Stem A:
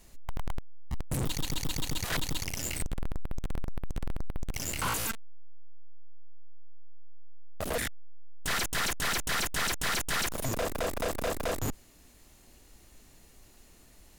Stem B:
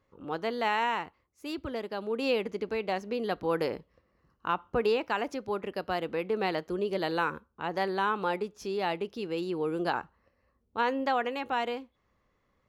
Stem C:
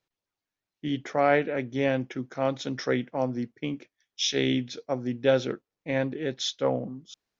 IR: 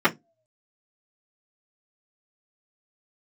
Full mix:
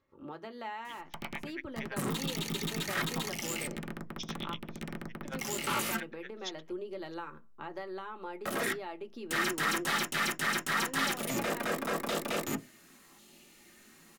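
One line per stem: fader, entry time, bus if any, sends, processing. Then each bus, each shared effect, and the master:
-0.5 dB, 0.85 s, bus A, send -18.5 dB, dry
-6.0 dB, 0.00 s, muted 4.54–5.25, no bus, send -21 dB, compressor 6:1, threshold -36 dBFS, peak gain reduction 12.5 dB
-7.0 dB, 0.00 s, bus A, no send, dB-linear tremolo 8.8 Hz, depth 32 dB
bus A: 0.0 dB, LFO high-pass saw down 0.91 Hz 900–3300 Hz; limiter -27.5 dBFS, peak gain reduction 9.5 dB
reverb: on, RT60 0.20 s, pre-delay 3 ms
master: dry

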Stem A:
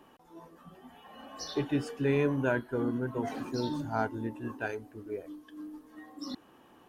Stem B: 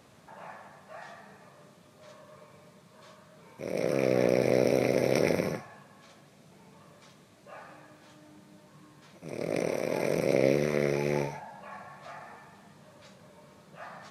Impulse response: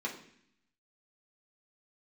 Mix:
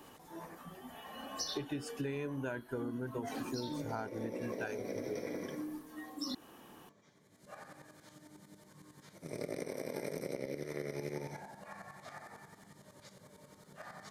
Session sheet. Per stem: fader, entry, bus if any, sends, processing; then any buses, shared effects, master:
+1.5 dB, 0.00 s, no send, dry
-1.0 dB, 0.00 s, send -11 dB, notch 2600 Hz, Q 5.1; tremolo saw up 11 Hz, depth 80%; auto duck -23 dB, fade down 1.75 s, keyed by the first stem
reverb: on, RT60 0.65 s, pre-delay 3 ms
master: high shelf 4700 Hz +10.5 dB; compressor 16:1, threshold -35 dBFS, peak gain reduction 15 dB

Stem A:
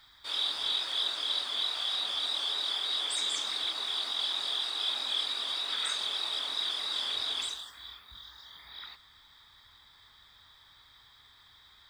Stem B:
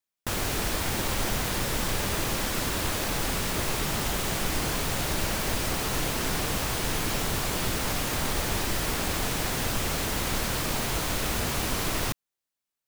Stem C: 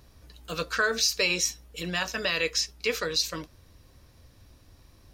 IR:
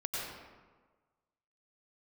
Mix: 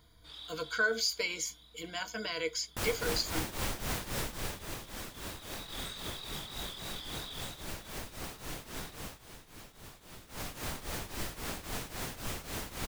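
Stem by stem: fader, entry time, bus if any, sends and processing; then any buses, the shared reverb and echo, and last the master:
-12.5 dB, 0.00 s, no send, auto duck -17 dB, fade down 1.60 s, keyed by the third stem
4.2 s -4 dB -> 4.76 s -11 dB -> 9 s -11 dB -> 9.26 s -20 dB -> 10.2 s -20 dB -> 10.46 s -7.5 dB, 2.50 s, no send, tremolo triangle 3.7 Hz, depth 85%
-10.0 dB, 0.00 s, no send, ripple EQ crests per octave 1.8, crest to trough 17 dB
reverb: off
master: dry

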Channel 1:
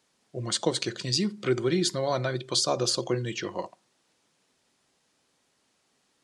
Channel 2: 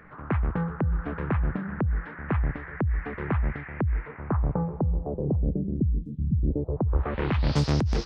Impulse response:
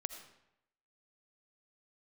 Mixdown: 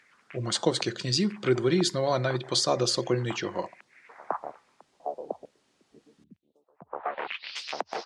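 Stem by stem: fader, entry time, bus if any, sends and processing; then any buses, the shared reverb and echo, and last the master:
+1.5 dB, 0.00 s, no send, dry
+1.0 dB, 0.00 s, no send, harmonic-percussive split harmonic -18 dB; LFO high-pass square 1.1 Hz 710–2600 Hz; auto duck -10 dB, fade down 0.30 s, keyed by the first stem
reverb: off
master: high shelf 10000 Hz -11 dB

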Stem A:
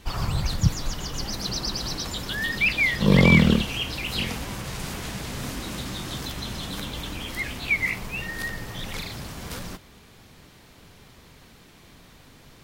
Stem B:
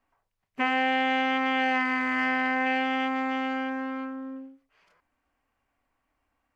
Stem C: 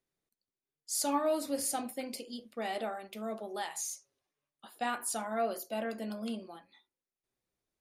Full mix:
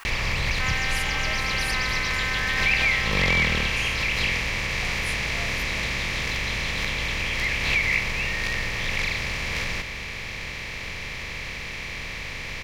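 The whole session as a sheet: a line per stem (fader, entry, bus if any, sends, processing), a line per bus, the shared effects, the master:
-3.0 dB, 0.05 s, no send, per-bin compression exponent 0.4; high shelf 6900 Hz -11 dB
-0.5 dB, 0.00 s, no send, steep high-pass 910 Hz
-6.5 dB, 0.00 s, no send, dry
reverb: off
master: bell 210 Hz -14.5 dB 2.6 oct; backwards sustainer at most 41 dB/s

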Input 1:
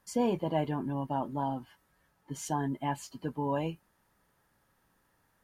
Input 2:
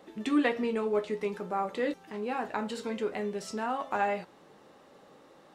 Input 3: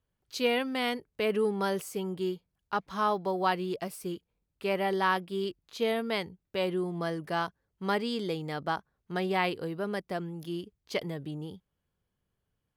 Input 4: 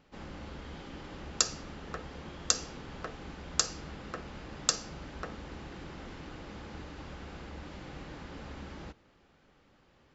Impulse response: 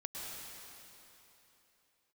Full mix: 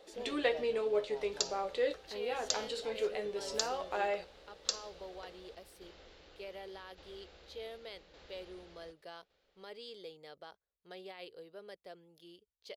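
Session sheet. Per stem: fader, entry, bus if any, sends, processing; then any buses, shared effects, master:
-17.5 dB, 0.00 s, no send, dry
-5.5 dB, 0.00 s, no send, dry
-18.0 dB, 1.75 s, no send, limiter -22 dBFS, peak gain reduction 8.5 dB
-11.0 dB, 0.00 s, no send, tremolo saw down 0.86 Hz, depth 50%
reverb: off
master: ten-band EQ 125 Hz -11 dB, 250 Hz -10 dB, 500 Hz +9 dB, 1000 Hz -5 dB, 4000 Hz +9 dB

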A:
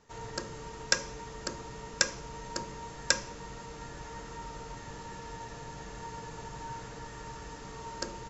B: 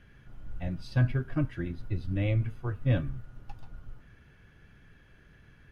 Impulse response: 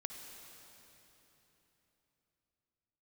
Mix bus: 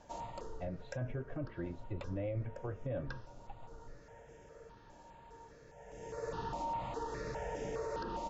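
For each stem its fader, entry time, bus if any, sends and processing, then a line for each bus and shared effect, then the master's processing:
+1.0 dB, 0.00 s, no send, step phaser 4.9 Hz 440–4200 Hz; auto duck -18 dB, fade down 0.75 s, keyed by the second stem
-9.5 dB, 0.00 s, no send, steep low-pass 4100 Hz 96 dB/oct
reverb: off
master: treble ducked by the level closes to 2700 Hz, closed at -36 dBFS; bell 560 Hz +14.5 dB 1.2 oct; limiter -30.5 dBFS, peak gain reduction 10.5 dB

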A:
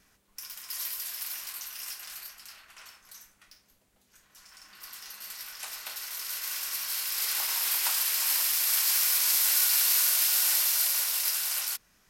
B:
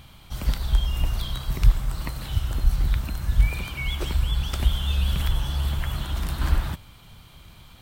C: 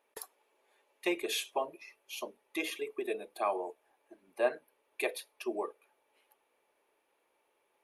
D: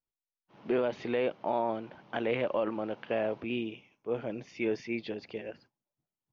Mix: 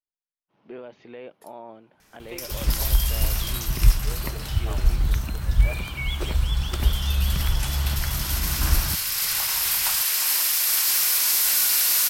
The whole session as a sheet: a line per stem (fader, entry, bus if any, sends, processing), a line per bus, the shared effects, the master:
0.0 dB, 2.00 s, no send, added harmonics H 4 -20 dB, 5 -14 dB, 6 -24 dB, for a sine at -11 dBFS
+0.5 dB, 2.20 s, no send, dry
-9.0 dB, 1.25 s, no send, dry
-10.5 dB, 0.00 s, no send, dry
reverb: off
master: dry

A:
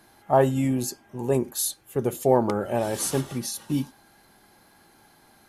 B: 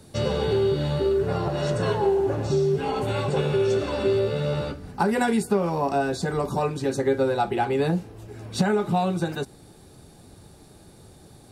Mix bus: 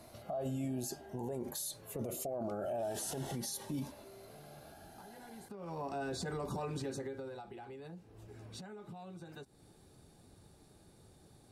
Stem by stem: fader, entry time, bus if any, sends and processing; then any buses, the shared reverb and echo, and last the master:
-5.5 dB, 0.00 s, no send, negative-ratio compressor -28 dBFS, ratio -1; bell 650 Hz +14 dB 0.52 oct; cascading phaser rising 0.49 Hz
5.15 s -12.5 dB -> 5.79 s 0 dB -> 6.8 s 0 dB -> 7.51 s -12 dB, 0.00 s, no send, limiter -18.5 dBFS, peak gain reduction 8 dB; compressor 10:1, threshold -34 dBFS, peak gain reduction 12.5 dB; auto duck -7 dB, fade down 0.25 s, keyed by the first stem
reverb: off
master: limiter -31 dBFS, peak gain reduction 15.5 dB

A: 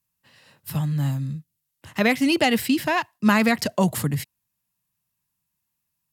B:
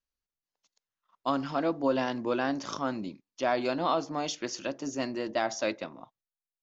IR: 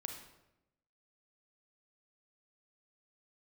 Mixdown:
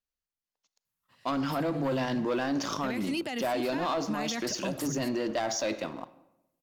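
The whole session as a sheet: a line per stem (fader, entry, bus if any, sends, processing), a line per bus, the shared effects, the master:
-9.5 dB, 0.85 s, no send, dry
-1.5 dB, 0.00 s, send -8.5 dB, sample leveller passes 2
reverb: on, RT60 0.90 s, pre-delay 31 ms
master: limiter -23 dBFS, peak gain reduction 11 dB

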